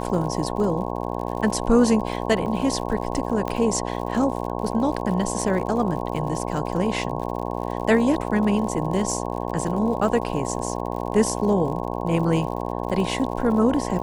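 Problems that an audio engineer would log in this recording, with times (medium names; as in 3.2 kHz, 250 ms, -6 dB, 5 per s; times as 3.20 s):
buzz 60 Hz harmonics 18 -28 dBFS
crackle 71 per s -32 dBFS
2.46 s: dropout 3.9 ms
3.48 s: pop -14 dBFS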